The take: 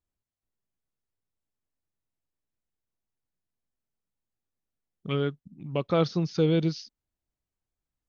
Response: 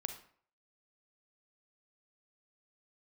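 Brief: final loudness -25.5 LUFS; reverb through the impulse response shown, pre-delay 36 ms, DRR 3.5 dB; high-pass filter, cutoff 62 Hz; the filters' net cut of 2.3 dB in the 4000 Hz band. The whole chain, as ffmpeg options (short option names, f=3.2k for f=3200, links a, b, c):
-filter_complex "[0:a]highpass=62,equalizer=f=4k:t=o:g=-3,asplit=2[a][b];[1:a]atrim=start_sample=2205,adelay=36[c];[b][c]afir=irnorm=-1:irlink=0,volume=-3dB[d];[a][d]amix=inputs=2:normalize=0,volume=0.5dB"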